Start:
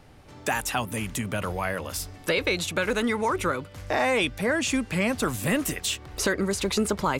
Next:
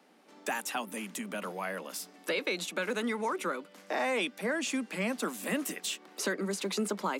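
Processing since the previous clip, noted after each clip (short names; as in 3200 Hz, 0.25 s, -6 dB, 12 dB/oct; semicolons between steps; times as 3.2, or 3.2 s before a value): steep high-pass 180 Hz 96 dB/oct; gain -7 dB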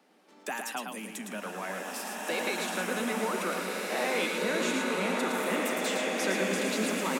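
on a send: echo 0.111 s -5 dB; on the sum: bloom reverb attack 2.11 s, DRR -3 dB; gain -2 dB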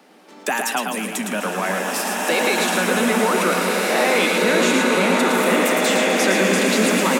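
in parallel at -1 dB: limiter -25 dBFS, peak gain reduction 8.5 dB; on the sum: echo with dull and thin repeats by turns 0.127 s, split 1200 Hz, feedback 85%, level -12 dB; gain +8 dB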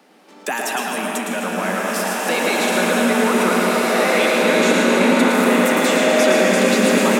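digital reverb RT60 3.8 s, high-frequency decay 0.35×, pre-delay 0.105 s, DRR 0.5 dB; gain -1.5 dB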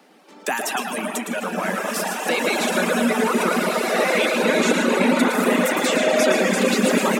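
reverb removal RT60 1.7 s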